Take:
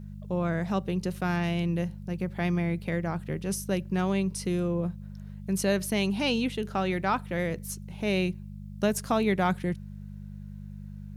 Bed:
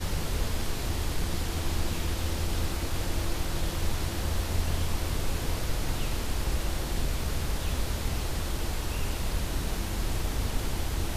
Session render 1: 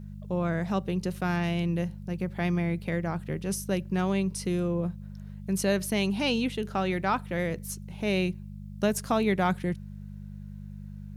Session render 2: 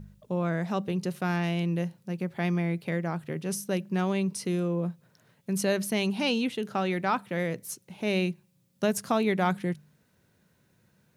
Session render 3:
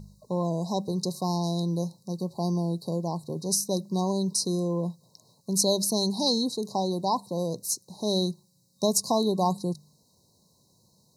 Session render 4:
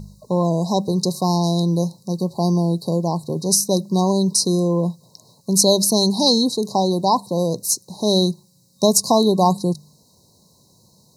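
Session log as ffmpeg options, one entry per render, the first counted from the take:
-af anull
-af "bandreject=f=50:t=h:w=4,bandreject=f=100:t=h:w=4,bandreject=f=150:t=h:w=4,bandreject=f=200:t=h:w=4"
-af "afftfilt=real='re*(1-between(b*sr/4096,1100,3800))':imag='im*(1-between(b*sr/4096,1100,3800))':win_size=4096:overlap=0.75,equalizer=f=4.5k:w=0.35:g=12.5"
-af "volume=9dB,alimiter=limit=-2dB:level=0:latency=1"

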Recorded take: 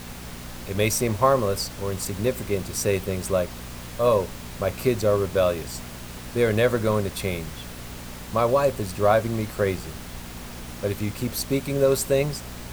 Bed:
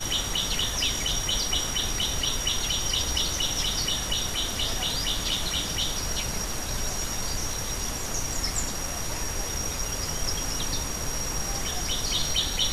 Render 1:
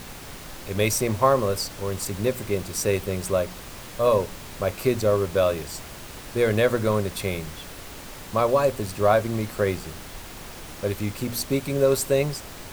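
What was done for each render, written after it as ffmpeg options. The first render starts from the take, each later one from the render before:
-af "bandreject=f=60:t=h:w=4,bandreject=f=120:t=h:w=4,bandreject=f=180:t=h:w=4,bandreject=f=240:t=h:w=4"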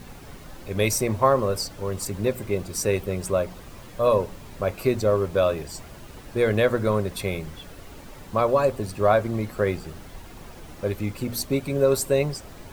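-af "afftdn=nr=9:nf=-40"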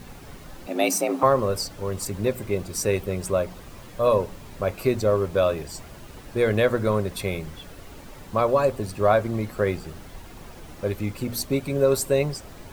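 -filter_complex "[0:a]asettb=1/sr,asplit=3[a][b][c];[a]atrim=end=0.674[d];[b]atrim=start=0.67:end=1.23,asetpts=PTS-STARTPTS,afade=t=in:d=0.004:c=qsin,afade=t=out:st=0.556:d=0.004:c=qsin,afreqshift=170[e];[c]atrim=start=1.226[f];[d][e]acrossfade=d=0.004:c1=hsin:c2=qsin[g];[g][f]acrossfade=d=0.004:c1=qsin:c2=hsin"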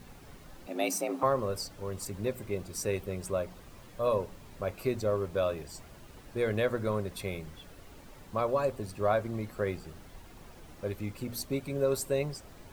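-af "volume=-8.5dB"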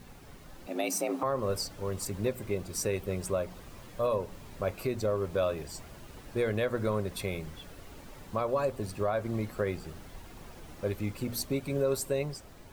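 -af "dynaudnorm=f=110:g=13:m=3dB,alimiter=limit=-19.5dB:level=0:latency=1:release=195"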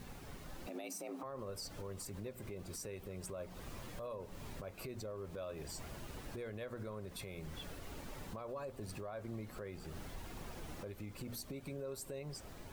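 -af "acompressor=threshold=-38dB:ratio=12,alimiter=level_in=12dB:limit=-24dB:level=0:latency=1:release=52,volume=-12dB"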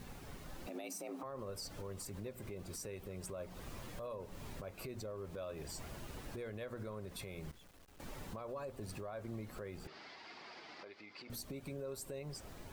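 -filter_complex "[0:a]asettb=1/sr,asplit=3[a][b][c];[a]atrim=end=7.514[d];[b]atrim=start=7.51:end=8,asetpts=PTS-STARTPTS,afade=t=in:d=0.004:c=qsin,afade=t=out:st=0.486:d=0.004:c=qsin,aeval=exprs='(tanh(1120*val(0)+0.7)-tanh(0.7))/1120':c=same[e];[c]atrim=start=7.996[f];[d][e]acrossfade=d=0.004:c1=hsin:c2=qsin[g];[g][f]acrossfade=d=0.004:c1=qsin:c2=hsin,asettb=1/sr,asplit=3[h][i][j];[h]atrim=end=9.874[k];[i]atrim=start=9.87:end=11.3,asetpts=PTS-STARTPTS,afade=t=in:d=0.004:c=qsin,afade=t=out:st=1.426:d=0.004:c=qsin,highpass=450,equalizer=f=520:t=q:w=4:g=-7,equalizer=f=2.1k:t=q:w=4:g=6,equalizer=f=4.8k:t=q:w=4:g=10,lowpass=f=4.8k:w=0.5412,lowpass=f=4.8k:w=1.3066[l];[j]atrim=start=11.296[m];[k][l]acrossfade=d=0.004:c1=hsin:c2=qsin[n];[n][m]acrossfade=d=0.004:c1=qsin:c2=hsin"

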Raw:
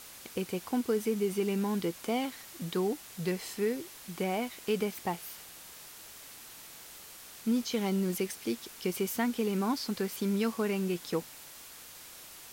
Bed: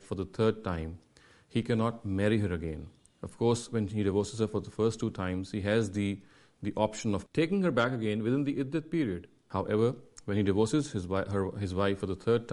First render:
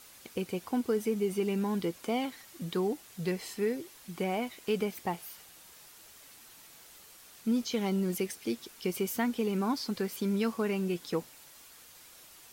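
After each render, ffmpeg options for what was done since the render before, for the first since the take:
-af "afftdn=nr=6:nf=-50"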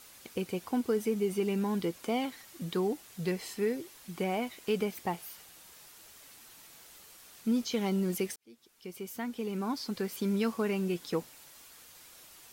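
-filter_complex "[0:a]asplit=2[a][b];[a]atrim=end=8.36,asetpts=PTS-STARTPTS,afade=t=out:st=8.356:d=0.004:c=hsin[c];[b]atrim=start=8.36,asetpts=PTS-STARTPTS,afade=t=in:d=1.91[d];[c][d]concat=n=2:v=0:a=1"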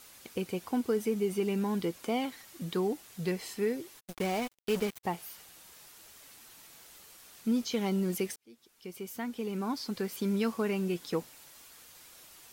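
-filter_complex "[0:a]asplit=3[a][b][c];[a]afade=t=out:st=3.99:d=0.02[d];[b]acrusher=bits=5:mix=0:aa=0.5,afade=t=in:st=3.99:d=0.02,afade=t=out:st=5.03:d=0.02[e];[c]afade=t=in:st=5.03:d=0.02[f];[d][e][f]amix=inputs=3:normalize=0"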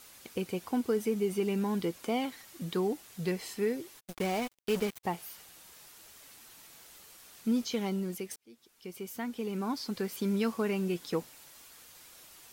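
-filter_complex "[0:a]asplit=2[a][b];[a]atrim=end=8.31,asetpts=PTS-STARTPTS,afade=t=out:st=7.63:d=0.68:silence=0.375837[c];[b]atrim=start=8.31,asetpts=PTS-STARTPTS,afade=t=in:d=0.004:c=hsin:silence=0.375837[d];[c][d]concat=n=2:v=0:a=1"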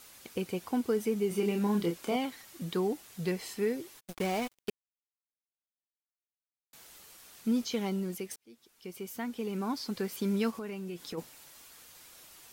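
-filter_complex "[0:a]asettb=1/sr,asplit=3[a][b][c];[a]atrim=end=1.284[d];[b]atrim=start=1.28:end=2.16,asetpts=PTS-STARTPTS,afade=t=in:d=0.004:c=qsin,afade=t=out:st=0.876:d=0.004:c=qsin,asplit=2[e][f];[f]adelay=29,volume=-5dB[g];[e][g]amix=inputs=2:normalize=0,atrim=end_sample=38808[h];[c]atrim=start=2.156[i];[d][h]acrossfade=d=0.004:c1=hsin:c2=qsin[j];[j][i]acrossfade=d=0.004:c1=qsin:c2=hsin,asplit=3[k][l][m];[k]afade=t=out:st=10.5:d=0.02[n];[l]acompressor=threshold=-37dB:ratio=4:attack=3.2:release=140:knee=1:detection=peak,afade=t=in:st=10.5:d=0.02,afade=t=out:st=11.17:d=0.02[o];[m]afade=t=in:st=11.17:d=0.02[p];[n][o][p]amix=inputs=3:normalize=0,asplit=3[q][r][s];[q]atrim=end=4.7,asetpts=PTS-STARTPTS,afade=t=out:st=4.696:d=0.004:c=hsin[t];[r]atrim=start=4.7:end=6.73,asetpts=PTS-STARTPTS,volume=0[u];[s]atrim=start=6.73,asetpts=PTS-STARTPTS,afade=t=in:d=0.004:c=hsin[v];[t][u][v]concat=n=3:v=0:a=1"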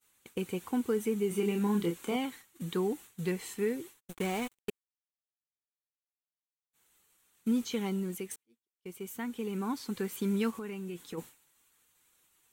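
-af "equalizer=f=630:t=o:w=0.33:g=-10,equalizer=f=5k:t=o:w=0.33:g=-11,equalizer=f=8k:t=o:w=0.33:g=4,agate=range=-33dB:threshold=-43dB:ratio=3:detection=peak"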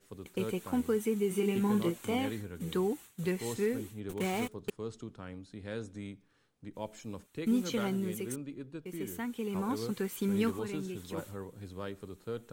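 -filter_complex "[1:a]volume=-12dB[a];[0:a][a]amix=inputs=2:normalize=0"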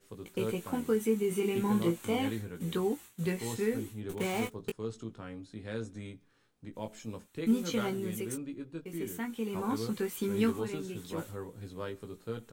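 -filter_complex "[0:a]asplit=2[a][b];[b]adelay=18,volume=-5.5dB[c];[a][c]amix=inputs=2:normalize=0"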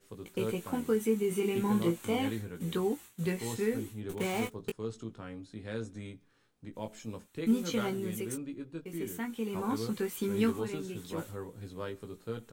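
-af anull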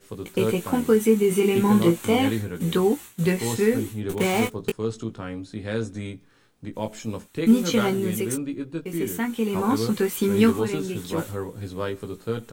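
-af "volume=10.5dB"

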